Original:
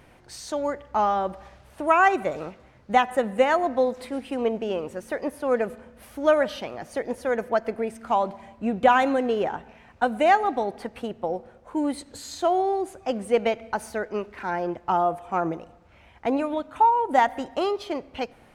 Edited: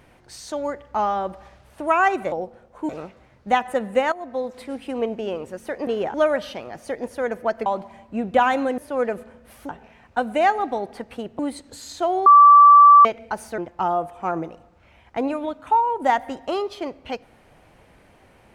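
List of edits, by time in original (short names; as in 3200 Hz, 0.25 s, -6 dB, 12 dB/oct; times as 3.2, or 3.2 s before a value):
3.55–4.38 fade in equal-power, from -15 dB
5.3–6.21 swap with 9.27–9.54
7.73–8.15 cut
11.24–11.81 move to 2.32
12.68–13.47 bleep 1160 Hz -6 dBFS
14–14.67 cut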